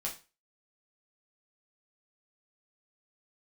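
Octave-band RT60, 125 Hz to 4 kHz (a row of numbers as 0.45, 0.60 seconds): 0.35, 0.30, 0.30, 0.30, 0.30, 0.30 seconds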